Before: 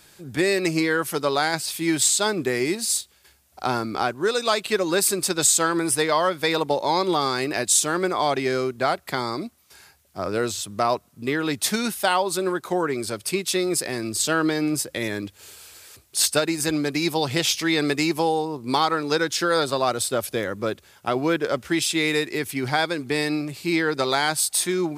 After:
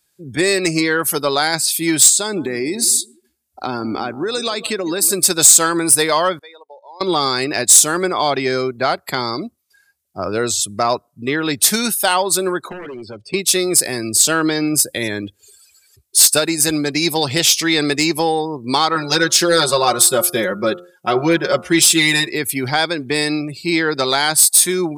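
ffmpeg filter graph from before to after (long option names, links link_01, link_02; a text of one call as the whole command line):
ffmpeg -i in.wav -filter_complex "[0:a]asettb=1/sr,asplit=3[link_01][link_02][link_03];[link_01]atrim=end=2.094[link_04];[link_02]atrim=start=2.09:end=5.13,asetpts=PTS-STARTPTS,afade=type=in:duration=0.004:curve=qsin,afade=type=out:start_time=3.036:duration=0.004:curve=qsin,equalizer=frequency=280:width=1.9:gain=6,acompressor=threshold=-22dB:ratio=8:attack=3.2:release=140:knee=1:detection=peak,asplit=2[link_05][link_06];[link_06]adelay=157,lowpass=frequency=1800:poles=1,volume=-15dB,asplit=2[link_07][link_08];[link_08]adelay=157,lowpass=frequency=1800:poles=1,volume=0.41,asplit=2[link_09][link_10];[link_10]adelay=157,lowpass=frequency=1800:poles=1,volume=0.41,asplit=2[link_11][link_12];[link_12]adelay=157,lowpass=frequency=1800:poles=1,volume=0.41[link_13];[link_05][link_07][link_09][link_11][link_13]amix=inputs=5:normalize=0,atrim=end_sample=134064[link_14];[link_03]atrim=start=5.126[link_15];[link_04][link_14]acrossfade=duration=0.004:curve1=hsin:curve2=qsin[link_16];[link_16][link_15]acrossfade=duration=0.004:curve1=qsin:curve2=hsin,asettb=1/sr,asplit=3[link_17][link_18][link_19];[link_17]atrim=end=6.394[link_20];[link_18]atrim=start=6.39:end=7.01,asetpts=PTS-STARTPTS,afade=type=in:duration=0.004:curve=qsin,afade=type=out:start_time=0.616:duration=0.004:curve=qsin,bandpass=frequency=510:width_type=q:width=0.87,aderivative[link_21];[link_19]atrim=start=7.006[link_22];[link_20][link_21]acrossfade=duration=0.004:curve1=hsin:curve2=qsin[link_23];[link_23][link_22]acrossfade=duration=0.004:curve1=qsin:curve2=hsin,asettb=1/sr,asplit=3[link_24][link_25][link_26];[link_24]atrim=end=12.694[link_27];[link_25]atrim=start=12.69:end=13.34,asetpts=PTS-STARTPTS,afade=type=in:duration=0.004:curve=qsin,afade=type=out:start_time=0.646:duration=0.004:curve=qsin,lowpass=5500,aeval=exprs='0.075*(abs(mod(val(0)/0.075+3,4)-2)-1)':channel_layout=same,acrossover=split=97|680|2100[link_28][link_29][link_30][link_31];[link_28]acompressor=threshold=-54dB:ratio=3[link_32];[link_29]acompressor=threshold=-36dB:ratio=3[link_33];[link_30]acompressor=threshold=-47dB:ratio=3[link_34];[link_31]acompressor=threshold=-48dB:ratio=3[link_35];[link_32][link_33][link_34][link_35]amix=inputs=4:normalize=0[link_36];[link_26]atrim=start=13.336[link_37];[link_27][link_36]acrossfade=duration=0.004:curve1=hsin:curve2=qsin[link_38];[link_38][link_37]acrossfade=duration=0.004:curve1=qsin:curve2=hsin,asettb=1/sr,asplit=3[link_39][link_40][link_41];[link_39]atrim=end=18.954[link_42];[link_40]atrim=start=18.95:end=22.31,asetpts=PTS-STARTPTS,afade=type=in:duration=0.004:curve=qsin,afade=type=out:start_time=3.356:duration=0.004:curve=qsin,aecho=1:1:5.5:0.92,atrim=end_sample=148176,bandreject=frequency=88.42:width_type=h:width=4,bandreject=frequency=176.84:width_type=h:width=4,bandreject=frequency=265.26:width_type=h:width=4,bandreject=frequency=353.68:width_type=h:width=4,bandreject=frequency=442.1:width_type=h:width=4,bandreject=frequency=530.52:width_type=h:width=4,bandreject=frequency=618.94:width_type=h:width=4,bandreject=frequency=707.36:width_type=h:width=4,bandreject=frequency=795.78:width_type=h:width=4,bandreject=frequency=884.2:width_type=h:width=4,bandreject=frequency=972.62:width_type=h:width=4,bandreject=frequency=1061.04:width_type=h:width=4,bandreject=frequency=1149.46:width_type=h:width=4,bandreject=frequency=1237.88:width_type=h:width=4,bandreject=frequency=1326.3:width_type=h:width=4,bandreject=frequency=1414.72:width_type=h:width=4[link_43];[link_41]atrim=start=22.306[link_44];[link_42][link_43]acrossfade=duration=0.004:curve1=hsin:curve2=qsin[link_45];[link_45][link_44]acrossfade=duration=0.004:curve1=qsin:curve2=hsin,afftdn=noise_reduction=25:noise_floor=-41,highshelf=frequency=4700:gain=11.5,acontrast=42,volume=-1dB" out.wav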